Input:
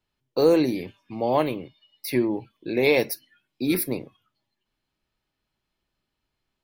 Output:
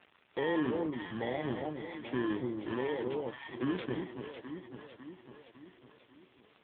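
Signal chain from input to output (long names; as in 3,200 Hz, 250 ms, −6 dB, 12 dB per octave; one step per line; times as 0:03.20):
samples in bit-reversed order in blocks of 32 samples
noise gate with hold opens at −57 dBFS
0:01.17–0:02.78: parametric band 96 Hz +7.5 dB 0.49 octaves
in parallel at −2.5 dB: downward compressor 6 to 1, threshold −35 dBFS, peak gain reduction 19.5 dB
on the sum: surface crackle 300 per second −35 dBFS
on a send: delay that swaps between a low-pass and a high-pass 276 ms, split 950 Hz, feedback 74%, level −6.5 dB
on the sum: brickwall limiter −14.5 dBFS, peak gain reduction 8 dB
level −7.5 dB
AMR narrowband 5.9 kbit/s 8,000 Hz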